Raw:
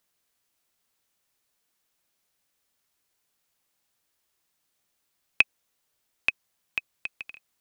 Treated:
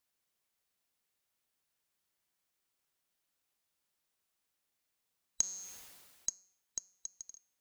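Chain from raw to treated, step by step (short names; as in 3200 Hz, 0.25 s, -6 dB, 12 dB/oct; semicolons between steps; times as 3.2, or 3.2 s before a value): band-swap scrambler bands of 4000 Hz; dynamic EQ 4600 Hz, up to -7 dB, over -40 dBFS, Q 1.1; resonator 190 Hz, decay 0.56 s, harmonics all, mix 40%; 5.41–6.29 sustainer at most 32 dB/s; gain -3.5 dB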